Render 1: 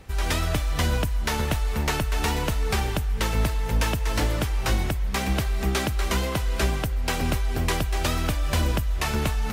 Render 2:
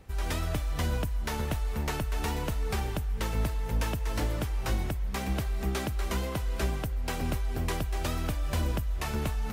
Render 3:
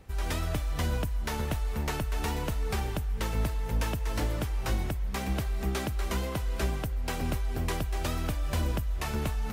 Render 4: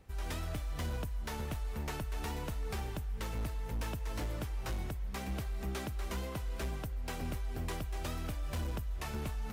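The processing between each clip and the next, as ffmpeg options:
-af "equalizer=f=3700:w=0.33:g=-4,volume=0.531"
-af anull
-af "asoftclip=type=hard:threshold=0.0596,volume=0.447"

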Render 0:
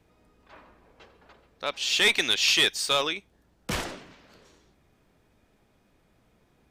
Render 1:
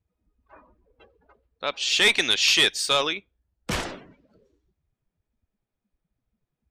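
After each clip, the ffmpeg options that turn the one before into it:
-af "afftdn=nr=25:nf=-48,volume=1.33"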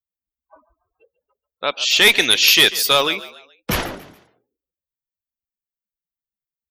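-filter_complex "[0:a]afftdn=nr=34:nf=-41,aexciter=amount=15.1:drive=9.7:freq=12000,asplit=4[s0][s1][s2][s3];[s1]adelay=141,afreqshift=39,volume=0.141[s4];[s2]adelay=282,afreqshift=78,volume=0.0562[s5];[s3]adelay=423,afreqshift=117,volume=0.0226[s6];[s0][s4][s5][s6]amix=inputs=4:normalize=0,volume=2.11"

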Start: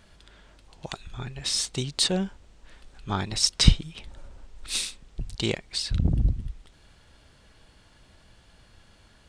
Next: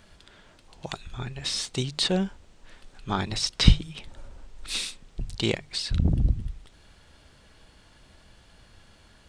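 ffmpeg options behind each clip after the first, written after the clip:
-filter_complex "[0:a]bandreject=f=50:t=h:w=6,bandreject=f=100:t=h:w=6,bandreject=f=150:t=h:w=6,acrossover=split=4500[s0][s1];[s1]acompressor=threshold=0.0178:ratio=4:attack=1:release=60[s2];[s0][s2]amix=inputs=2:normalize=0,volume=1.19"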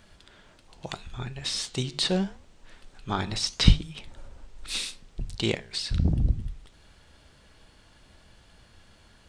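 -af "flanger=delay=8.4:depth=9.7:regen=-83:speed=0.77:shape=sinusoidal,volume=1.5"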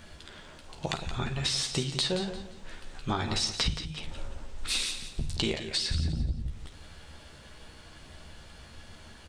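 -filter_complex "[0:a]asplit=2[s0][s1];[s1]aecho=0:1:13|51:0.531|0.251[s2];[s0][s2]amix=inputs=2:normalize=0,acompressor=threshold=0.0282:ratio=12,asplit=2[s3][s4];[s4]aecho=0:1:174|348|522:0.299|0.0866|0.0251[s5];[s3][s5]amix=inputs=2:normalize=0,volume=1.78"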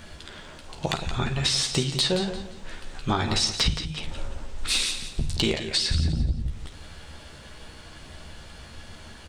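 -af "asoftclip=type=hard:threshold=0.126,volume=1.88"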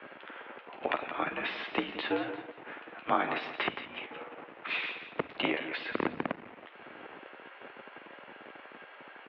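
-filter_complex "[0:a]acrossover=split=500[s0][s1];[s0]acrusher=bits=4:dc=4:mix=0:aa=0.000001[s2];[s2][s1]amix=inputs=2:normalize=0,highpass=f=340:t=q:w=0.5412,highpass=f=340:t=q:w=1.307,lowpass=f=2700:t=q:w=0.5176,lowpass=f=2700:t=q:w=0.7071,lowpass=f=2700:t=q:w=1.932,afreqshift=-70"

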